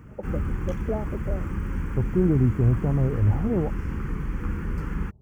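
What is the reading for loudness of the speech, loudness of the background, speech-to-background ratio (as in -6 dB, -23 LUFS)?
-25.5 LUFS, -31.5 LUFS, 6.0 dB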